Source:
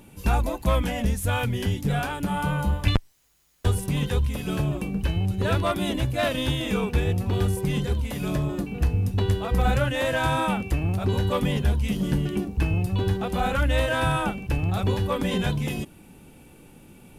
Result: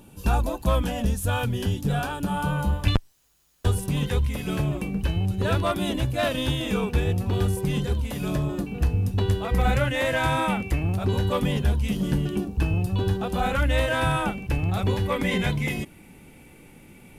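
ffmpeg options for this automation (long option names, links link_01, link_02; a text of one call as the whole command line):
ffmpeg -i in.wav -af "asetnsamples=nb_out_samples=441:pad=0,asendcmd='2.57 equalizer g -5;4.05 equalizer g 5;5.01 equalizer g -3;9.45 equalizer g 7.5;10.82 equalizer g -1.5;12.25 equalizer g -8;13.42 equalizer g 3.5;15.05 equalizer g 13.5',equalizer=frequency=2100:width_type=o:width=0.24:gain=-12" out.wav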